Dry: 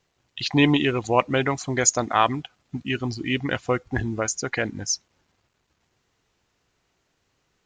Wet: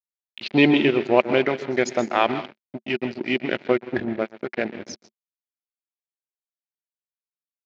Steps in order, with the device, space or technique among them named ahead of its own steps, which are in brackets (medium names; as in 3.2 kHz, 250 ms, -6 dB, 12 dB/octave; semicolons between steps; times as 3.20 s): 4.04–4.61 s: low-pass 1.6 kHz 12 dB/octave; plate-style reverb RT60 0.65 s, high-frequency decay 0.8×, pre-delay 110 ms, DRR 8.5 dB; blown loudspeaker (crossover distortion -30.5 dBFS; cabinet simulation 150–4400 Hz, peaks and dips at 220 Hz +8 dB, 370 Hz +9 dB, 600 Hz +6 dB, 1.1 kHz -5 dB, 2.3 kHz +6 dB)